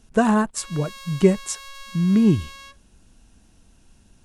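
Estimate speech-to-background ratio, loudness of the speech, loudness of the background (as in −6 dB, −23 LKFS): 18.5 dB, −21.5 LKFS, −40.0 LKFS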